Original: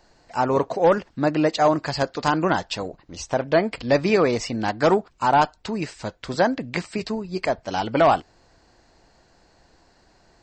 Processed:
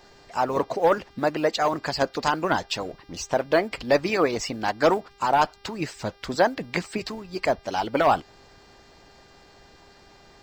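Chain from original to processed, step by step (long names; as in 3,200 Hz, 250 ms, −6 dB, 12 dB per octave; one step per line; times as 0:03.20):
mu-law and A-law mismatch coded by mu
harmonic and percussive parts rebalanced harmonic −10 dB
hum with harmonics 400 Hz, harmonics 14, −57 dBFS −3 dB per octave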